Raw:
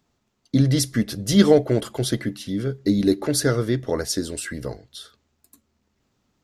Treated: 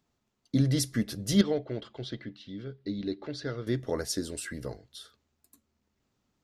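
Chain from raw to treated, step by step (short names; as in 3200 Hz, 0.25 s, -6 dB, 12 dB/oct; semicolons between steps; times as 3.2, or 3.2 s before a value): 1.41–3.67 ladder low-pass 4700 Hz, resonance 35%; gain -7 dB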